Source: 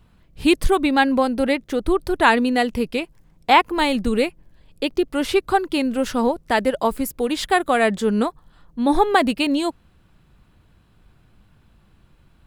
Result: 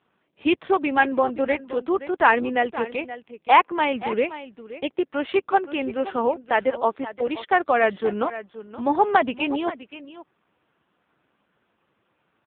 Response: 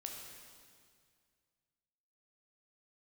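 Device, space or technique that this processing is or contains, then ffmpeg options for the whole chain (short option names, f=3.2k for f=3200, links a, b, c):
satellite phone: -af "highpass=370,lowpass=3.1k,aecho=1:1:524:0.2" -ar 8000 -c:a libopencore_amrnb -b:a 5900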